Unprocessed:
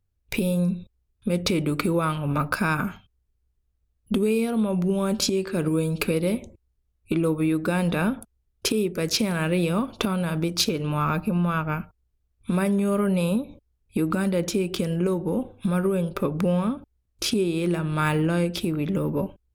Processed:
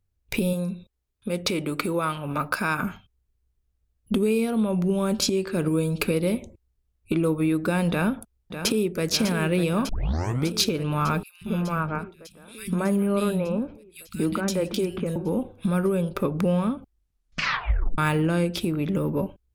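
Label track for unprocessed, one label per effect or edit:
0.530000	2.830000	low-shelf EQ 210 Hz −10 dB
7.900000	9.030000	delay throw 600 ms, feedback 75%, level −9 dB
9.890000	9.890000	tape start 0.59 s
11.230000	15.160000	three-band delay without the direct sound highs, lows, mids 180/230 ms, splits 180/2,300 Hz
16.750000	16.750000	tape stop 1.23 s

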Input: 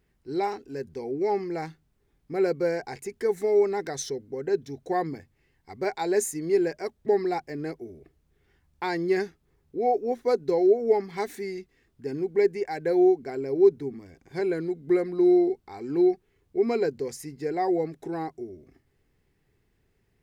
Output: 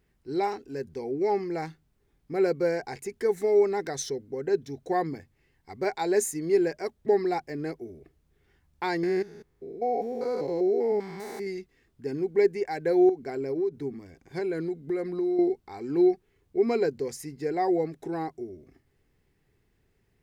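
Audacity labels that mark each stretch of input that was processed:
9.030000	11.470000	spectrum averaged block by block every 200 ms
13.090000	15.390000	downward compressor 4 to 1, threshold −26 dBFS

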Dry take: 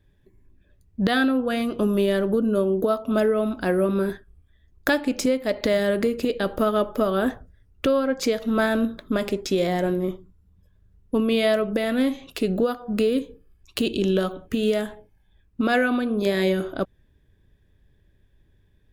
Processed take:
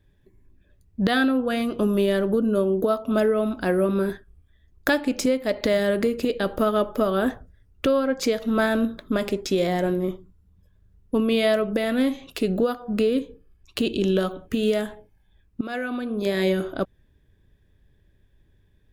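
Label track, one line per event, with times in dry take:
12.910000	14.010000	high-shelf EQ 6,300 Hz −5 dB
15.610000	16.500000	fade in, from −13.5 dB

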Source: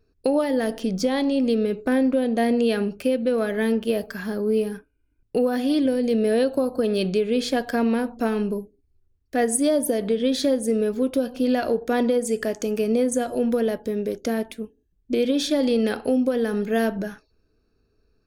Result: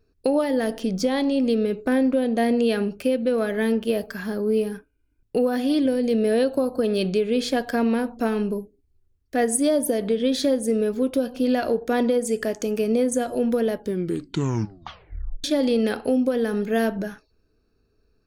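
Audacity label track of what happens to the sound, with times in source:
13.790000	13.790000	tape stop 1.65 s

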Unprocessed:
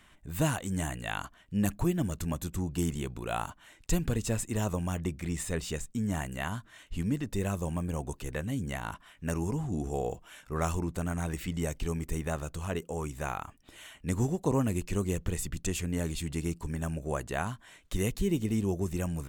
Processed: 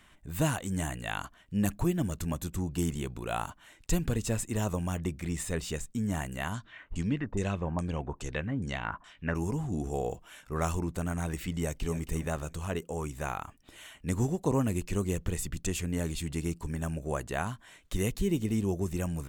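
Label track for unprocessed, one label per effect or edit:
6.540000	9.350000	auto-filter low-pass saw down 2.4 Hz 810–7,800 Hz
11.540000	11.990000	delay throw 270 ms, feedback 30%, level −12 dB

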